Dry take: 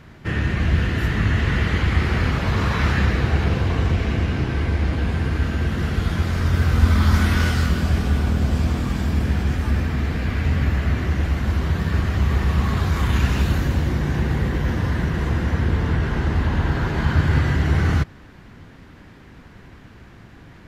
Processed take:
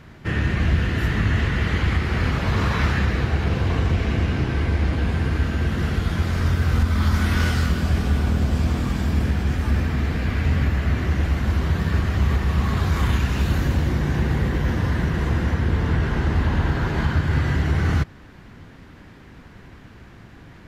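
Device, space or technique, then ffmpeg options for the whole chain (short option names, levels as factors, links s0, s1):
limiter into clipper: -af "alimiter=limit=0.316:level=0:latency=1:release=422,asoftclip=type=hard:threshold=0.266"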